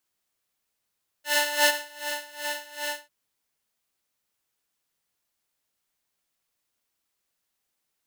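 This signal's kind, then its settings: synth patch with tremolo D5, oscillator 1 square, oscillator 2 saw, interval +7 st, detune 20 cents, oscillator 2 level -3 dB, sub -1.5 dB, noise -7.5 dB, filter highpass, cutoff 940 Hz, Q 0.87, filter envelope 0.5 oct, attack 384 ms, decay 0.09 s, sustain -19 dB, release 0.17 s, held 1.68 s, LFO 2.6 Hz, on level 18.5 dB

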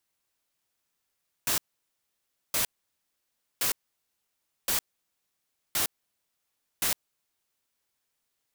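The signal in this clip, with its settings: noise bursts white, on 0.11 s, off 0.96 s, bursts 6, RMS -26.5 dBFS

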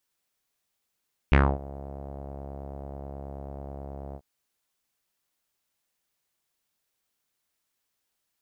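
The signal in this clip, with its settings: synth note saw C#2 12 dB/octave, low-pass 680 Hz, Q 3.2, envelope 2 oct, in 0.20 s, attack 1.4 ms, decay 0.26 s, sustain -23 dB, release 0.06 s, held 2.83 s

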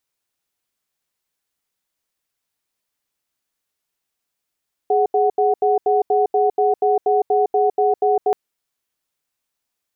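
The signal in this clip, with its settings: cadence 417 Hz, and 742 Hz, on 0.16 s, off 0.08 s, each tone -16 dBFS 3.43 s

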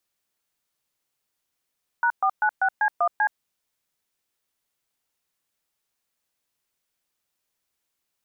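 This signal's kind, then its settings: DTMF "#496C1C", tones 72 ms, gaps 123 ms, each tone -20.5 dBFS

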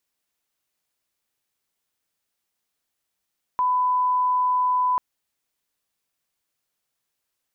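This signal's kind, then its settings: line-up tone -18 dBFS 1.39 s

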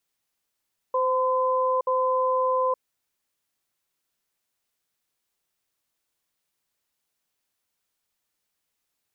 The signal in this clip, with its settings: cadence 516 Hz, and 1.02 kHz, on 0.87 s, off 0.06 s, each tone -23 dBFS 1.81 s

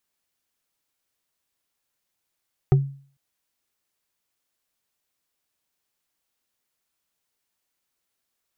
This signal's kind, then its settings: wood hit, lowest mode 138 Hz, decay 0.45 s, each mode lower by 7 dB, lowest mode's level -10 dB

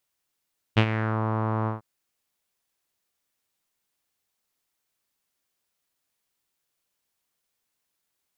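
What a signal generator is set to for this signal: synth note saw A2 12 dB/octave, low-pass 1.1 kHz, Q 2.9, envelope 1.5 oct, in 0.43 s, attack 21 ms, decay 0.07 s, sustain -10.5 dB, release 0.14 s, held 0.91 s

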